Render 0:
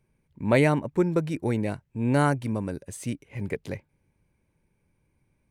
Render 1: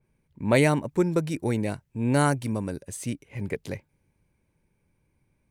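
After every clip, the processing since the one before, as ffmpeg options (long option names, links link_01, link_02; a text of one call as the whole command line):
ffmpeg -i in.wav -af "adynamicequalizer=threshold=0.00631:dfrequency=3600:dqfactor=0.7:tfrequency=3600:tqfactor=0.7:attack=5:release=100:ratio=0.375:range=4:mode=boostabove:tftype=highshelf" out.wav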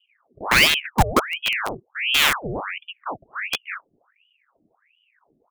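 ffmpeg -i in.wav -filter_complex "[0:a]aecho=1:1:2.4:0.81,acrossover=split=460[link_01][link_02];[link_02]acrusher=bits=3:mix=0:aa=0.000001[link_03];[link_01][link_03]amix=inputs=2:normalize=0,aeval=exprs='val(0)*sin(2*PI*1600*n/s+1600*0.85/1.4*sin(2*PI*1.4*n/s))':channel_layout=same,volume=5.5dB" out.wav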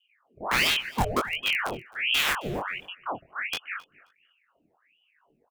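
ffmpeg -i in.wav -af "alimiter=limit=-9.5dB:level=0:latency=1:release=31,flanger=delay=20:depth=4.4:speed=0.77,aecho=1:1:266|532:0.075|0.0127" out.wav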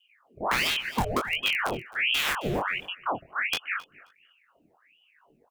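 ffmpeg -i in.wav -af "acompressor=threshold=-27dB:ratio=6,volume=4.5dB" out.wav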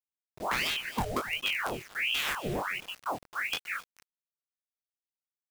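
ffmpeg -i in.wav -af "acrusher=bits=6:mix=0:aa=0.000001,volume=-4.5dB" out.wav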